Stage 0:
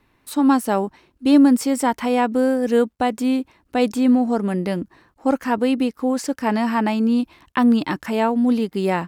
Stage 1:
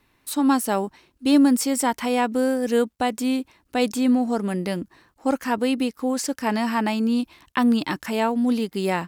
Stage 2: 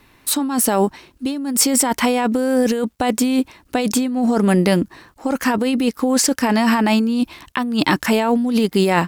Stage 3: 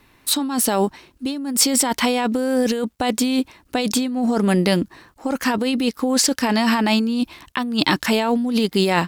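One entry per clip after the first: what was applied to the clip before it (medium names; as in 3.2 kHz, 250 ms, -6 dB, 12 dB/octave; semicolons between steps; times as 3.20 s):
treble shelf 2.7 kHz +8 dB; trim -3.5 dB
compressor with a negative ratio -25 dBFS, ratio -1; trim +8 dB
dynamic bell 3.9 kHz, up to +7 dB, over -38 dBFS, Q 1.4; trim -2.5 dB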